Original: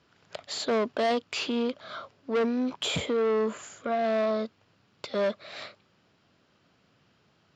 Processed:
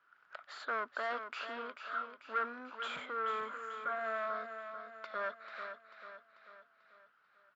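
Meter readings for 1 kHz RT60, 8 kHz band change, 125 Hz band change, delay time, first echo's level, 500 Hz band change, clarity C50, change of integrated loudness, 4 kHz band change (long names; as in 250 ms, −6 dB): no reverb audible, can't be measured, below −25 dB, 441 ms, −8.5 dB, −15.5 dB, no reverb audible, −10.5 dB, −15.5 dB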